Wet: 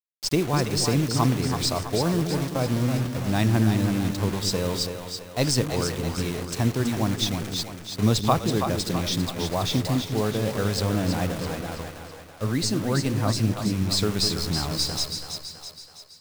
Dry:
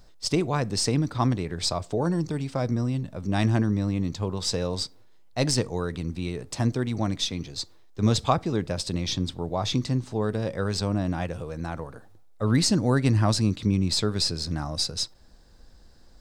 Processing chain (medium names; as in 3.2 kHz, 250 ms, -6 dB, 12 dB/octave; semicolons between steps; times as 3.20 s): word length cut 6-bit, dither none; 11.61–13.91 s: flange 2 Hz, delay 2.7 ms, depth 9.5 ms, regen +47%; two-band feedback delay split 470 Hz, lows 204 ms, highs 328 ms, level -6.5 dB; trim +1 dB